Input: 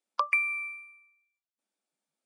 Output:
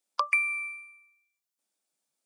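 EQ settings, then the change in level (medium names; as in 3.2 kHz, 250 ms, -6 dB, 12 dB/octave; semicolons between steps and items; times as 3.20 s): tone controls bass -5 dB, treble +8 dB; 0.0 dB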